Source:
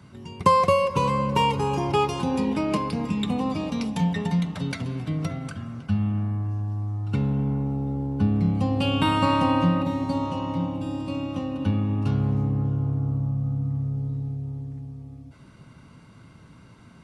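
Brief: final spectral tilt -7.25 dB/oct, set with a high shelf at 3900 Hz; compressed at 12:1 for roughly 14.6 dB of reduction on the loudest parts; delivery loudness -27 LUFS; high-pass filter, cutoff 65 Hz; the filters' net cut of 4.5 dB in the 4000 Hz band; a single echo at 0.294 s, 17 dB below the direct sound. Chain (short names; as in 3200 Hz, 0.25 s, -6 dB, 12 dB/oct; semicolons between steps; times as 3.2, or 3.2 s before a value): HPF 65 Hz; high shelf 3900 Hz -6 dB; bell 4000 Hz -3.5 dB; compressor 12:1, threshold -31 dBFS; echo 0.294 s -17 dB; gain +8.5 dB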